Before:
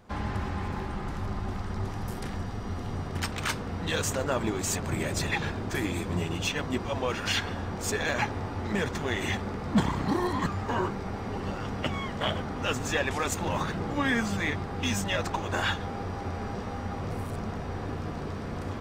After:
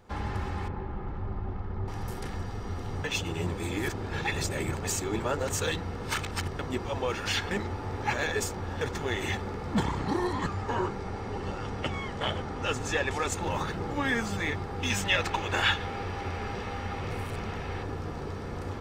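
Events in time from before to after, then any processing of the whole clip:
0:00.68–0:01.88: head-to-tape spacing loss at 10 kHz 38 dB
0:03.04–0:06.59: reverse
0:07.51–0:08.81: reverse
0:09.83–0:13.43: low-pass filter 11,000 Hz
0:14.90–0:17.83: parametric band 2,600 Hz +9 dB 1.4 octaves
whole clip: comb filter 2.3 ms, depth 30%; level −1.5 dB

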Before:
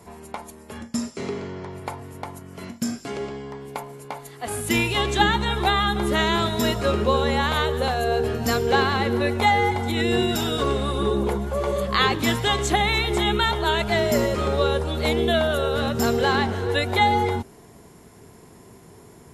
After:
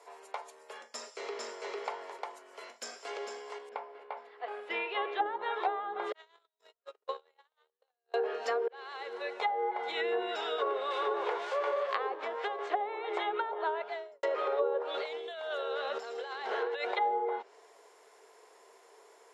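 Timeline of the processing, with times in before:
0:00.90–0:01.72: delay throw 450 ms, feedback 15%, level −0.5 dB
0:02.48–0:03.13: delay throw 450 ms, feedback 60%, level −7 dB
0:03.69–0:05.26: high-frequency loss of the air 400 metres
0:06.12–0:08.14: noise gate −17 dBFS, range −60 dB
0:08.68–0:09.90: fade in
0:10.90–0:12.67: spectral envelope flattened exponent 0.6
0:13.56–0:14.23: fade out and dull
0:14.94–0:16.97: compressor whose output falls as the input rises −26 dBFS, ratio −0.5
whole clip: Chebyshev high-pass filter 450 Hz, order 4; treble cut that deepens with the level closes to 680 Hz, closed at −19 dBFS; low-pass filter 7,300 Hz 12 dB per octave; level −5 dB

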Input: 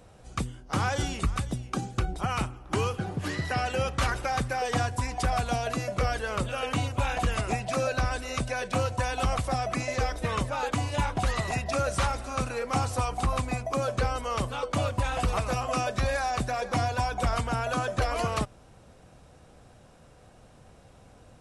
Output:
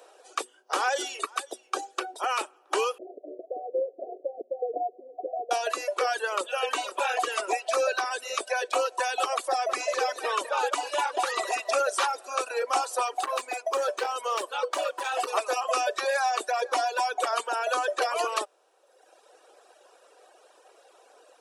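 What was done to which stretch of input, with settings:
0:02.98–0:05.51: Chebyshev low-pass filter 720 Hz, order 10
0:06.19–0:07.00: delay throw 510 ms, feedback 30%, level −9 dB
0:09.49–0:11.90: single-tap delay 200 ms −7 dB
0:13.07–0:15.27: hard clipping −24.5 dBFS
whole clip: Butterworth high-pass 370 Hz 48 dB per octave; reverb reduction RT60 1.2 s; notch filter 2,100 Hz, Q 7.7; level +4.5 dB

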